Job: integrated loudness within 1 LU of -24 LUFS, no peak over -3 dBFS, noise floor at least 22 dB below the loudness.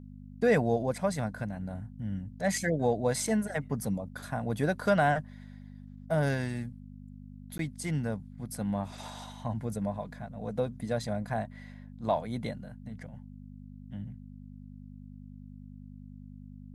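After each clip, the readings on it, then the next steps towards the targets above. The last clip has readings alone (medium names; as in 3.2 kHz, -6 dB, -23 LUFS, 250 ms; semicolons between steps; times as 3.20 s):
dropouts 1; longest dropout 12 ms; hum 50 Hz; highest harmonic 250 Hz; hum level -44 dBFS; loudness -32.0 LUFS; peak level -14.0 dBFS; loudness target -24.0 LUFS
-> interpolate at 7.58 s, 12 ms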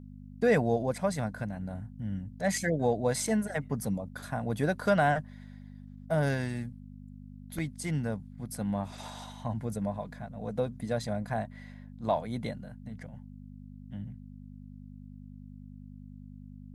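dropouts 0; hum 50 Hz; highest harmonic 250 Hz; hum level -44 dBFS
-> de-hum 50 Hz, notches 5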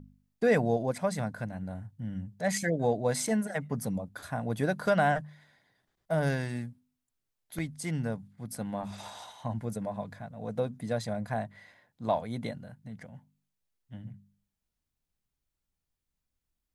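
hum not found; loudness -32.0 LUFS; peak level -14.5 dBFS; loudness target -24.0 LUFS
-> trim +8 dB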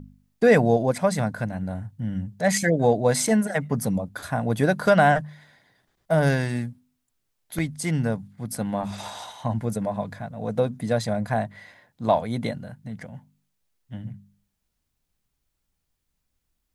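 loudness -24.0 LUFS; peak level -6.5 dBFS; noise floor -77 dBFS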